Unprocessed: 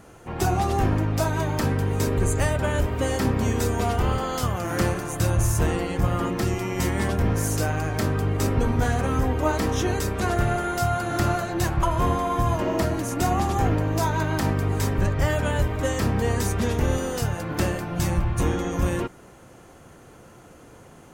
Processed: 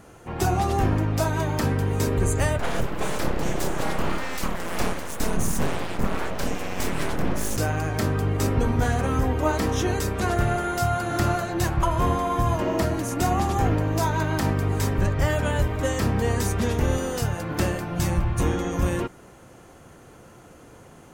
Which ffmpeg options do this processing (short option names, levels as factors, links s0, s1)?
-filter_complex "[0:a]asplit=3[s0][s1][s2];[s0]afade=t=out:st=2.58:d=0.02[s3];[s1]aeval=exprs='abs(val(0))':c=same,afade=t=in:st=2.58:d=0.02,afade=t=out:st=7.56:d=0.02[s4];[s2]afade=t=in:st=7.56:d=0.02[s5];[s3][s4][s5]amix=inputs=3:normalize=0"